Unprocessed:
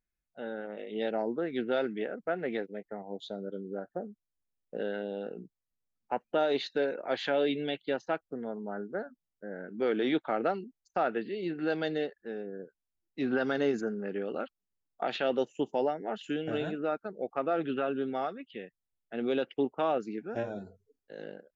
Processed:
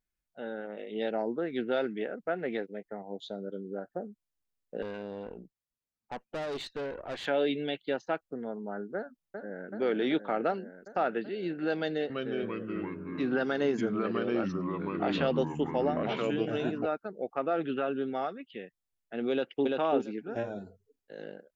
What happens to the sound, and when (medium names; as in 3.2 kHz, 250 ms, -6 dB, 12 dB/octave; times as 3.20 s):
4.82–7.26 s: valve stage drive 32 dB, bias 0.55
8.96–9.70 s: echo throw 380 ms, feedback 80%, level -5 dB
11.77–16.86 s: ever faster or slower copies 328 ms, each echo -3 st, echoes 3
19.31–19.71 s: echo throw 340 ms, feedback 15%, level -1.5 dB